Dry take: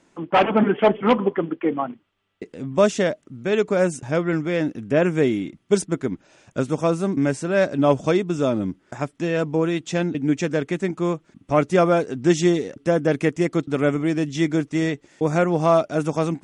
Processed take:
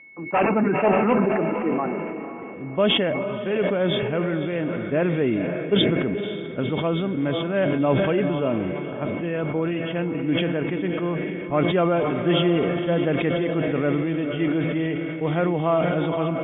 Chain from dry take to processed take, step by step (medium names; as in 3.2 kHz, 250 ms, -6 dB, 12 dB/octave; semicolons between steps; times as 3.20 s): knee-point frequency compression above 2.6 kHz 4:1; level-controlled noise filter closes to 1.2 kHz, open at -13 dBFS; whistle 2.2 kHz -39 dBFS; distance through air 150 m; echo that smears into a reverb 523 ms, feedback 43%, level -9 dB; decay stretcher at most 22 dB/s; trim -4 dB